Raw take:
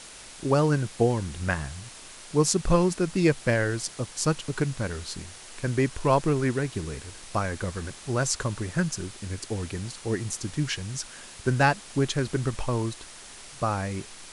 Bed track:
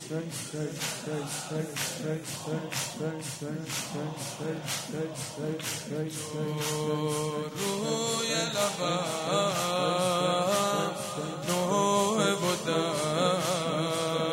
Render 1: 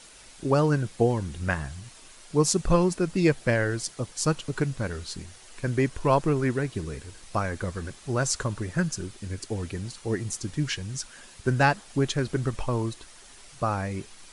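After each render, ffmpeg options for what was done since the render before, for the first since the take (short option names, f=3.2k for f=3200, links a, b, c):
-af "afftdn=nr=7:nf=-45"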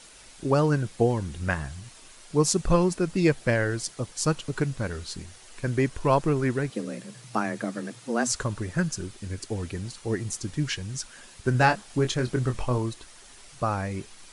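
-filter_complex "[0:a]asettb=1/sr,asplit=3[a][b][c];[a]atrim=end=6.704[d];[b]atrim=start=6.7:end=8.32,asetpts=PTS-STARTPTS,afade=t=in:d=0.004:c=qsin,afade=t=out:st=1.616:d=0.004:c=qsin,afreqshift=110[e];[c]atrim=start=8.316[f];[d][e]acrossfade=d=0.004:c1=hsin:c2=qsin[g];[g][f]acrossfade=d=0.004:c1=qsin:c2=hsin,asettb=1/sr,asplit=3[h][i][j];[h]atrim=end=11.524[k];[i]atrim=start=11.52:end=12.78,asetpts=PTS-STARTPTS,afade=t=in:d=0.004:c=qsin,afade=t=out:st=1.256:d=0.004:c=qsin,asplit=2[l][m];[m]adelay=24,volume=-7.5dB[n];[l][n]amix=inputs=2:normalize=0,atrim=end_sample=55566[o];[j]atrim=start=12.776[p];[k][o]acrossfade=d=0.004:c1=hsin:c2=qsin[q];[q][p]acrossfade=d=0.004:c1=qsin:c2=hsin"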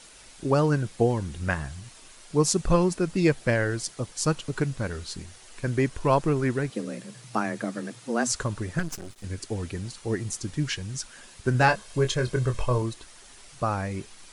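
-filter_complex "[0:a]asettb=1/sr,asplit=3[a][b][c];[a]atrim=end=8.794[d];[b]atrim=start=8.79:end=9.24,asetpts=PTS-STARTPTS,afade=t=in:d=0.004:c=qsin,afade=t=out:st=0.446:d=0.004:c=qsin,aeval=exprs='max(val(0),0)':c=same[e];[c]atrim=start=9.236[f];[d][e]acrossfade=d=0.004:c1=hsin:c2=qsin[g];[g][f]acrossfade=d=0.004:c1=qsin:c2=hsin,asettb=1/sr,asplit=3[h][i][j];[h]atrim=end=11.684[k];[i]atrim=start=11.68:end=12.82,asetpts=PTS-STARTPTS,afade=t=in:d=0.004:c=qsin,afade=t=out:st=1.136:d=0.004:c=qsin,aecho=1:1:1.9:0.51,atrim=end_sample=50274[l];[j]atrim=start=12.816[m];[k][l]acrossfade=d=0.004:c1=hsin:c2=qsin[n];[n][m]acrossfade=d=0.004:c1=qsin:c2=hsin"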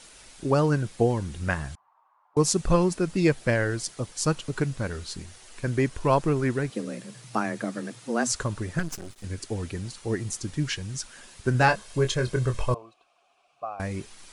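-filter_complex "[0:a]asettb=1/sr,asplit=3[a][b][c];[a]atrim=end=1.754[d];[b]atrim=start=1.75:end=2.37,asetpts=PTS-STARTPTS,afade=t=in:d=0.004:c=qsin,afade=t=out:st=0.616:d=0.004:c=qsin,asuperpass=centerf=960:order=4:qfactor=2.8[e];[c]atrim=start=2.366[f];[d][e]acrossfade=d=0.004:c1=hsin:c2=qsin[g];[g][f]acrossfade=d=0.004:c1=qsin:c2=hsin,asettb=1/sr,asplit=3[h][i][j];[h]atrim=end=12.744[k];[i]atrim=start=12.74:end=13.8,asetpts=PTS-STARTPTS,afade=t=in:d=0.004:c=qsin,afade=t=out:st=1.056:d=0.004:c=qsin,asplit=3[l][m][n];[l]bandpass=f=730:t=q:w=8,volume=0dB[o];[m]bandpass=f=1.09k:t=q:w=8,volume=-6dB[p];[n]bandpass=f=2.44k:t=q:w=8,volume=-9dB[q];[o][p][q]amix=inputs=3:normalize=0[r];[j]atrim=start=13.796[s];[k][r]acrossfade=d=0.004:c1=hsin:c2=qsin[t];[t][s]acrossfade=d=0.004:c1=qsin:c2=hsin"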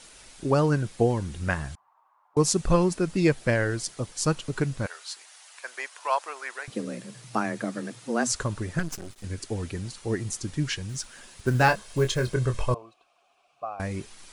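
-filter_complex "[0:a]asettb=1/sr,asplit=3[a][b][c];[a]atrim=end=4.864[d];[b]atrim=start=4.86:end=6.68,asetpts=PTS-STARTPTS,afade=t=in:d=0.004:c=qsin,afade=t=out:st=1.816:d=0.004:c=qsin,highpass=f=710:w=0.5412,highpass=f=710:w=1.3066[e];[c]atrim=start=6.676[f];[d][e]acrossfade=d=0.004:c1=hsin:c2=qsin[g];[g][f]acrossfade=d=0.004:c1=qsin:c2=hsin,asettb=1/sr,asplit=3[h][i][j];[h]atrim=end=10.894[k];[i]atrim=start=10.89:end=12.34,asetpts=PTS-STARTPTS,afade=t=in:d=0.004:c=qsin,afade=t=out:st=1.446:d=0.004:c=qsin,acrusher=bits=7:mode=log:mix=0:aa=0.000001[l];[j]atrim=start=12.336[m];[k][l]acrossfade=d=0.004:c1=hsin:c2=qsin[n];[n][m]acrossfade=d=0.004:c1=qsin:c2=hsin"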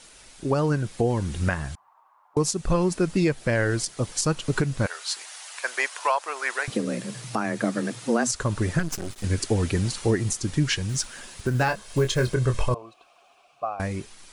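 -af "dynaudnorm=f=110:g=17:m=11.5dB,alimiter=limit=-12.5dB:level=0:latency=1:release=367"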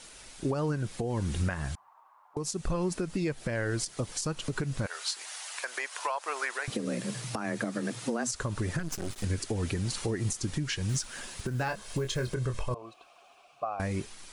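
-af "acompressor=threshold=-25dB:ratio=6,alimiter=limit=-21dB:level=0:latency=1:release=191"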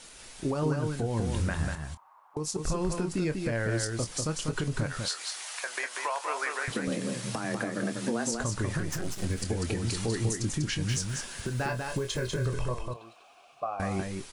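-filter_complex "[0:a]asplit=2[a][b];[b]adelay=26,volume=-11dB[c];[a][c]amix=inputs=2:normalize=0,aecho=1:1:195:0.596"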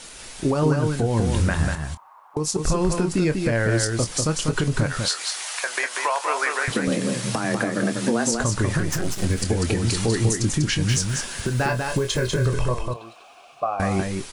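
-af "volume=8.5dB"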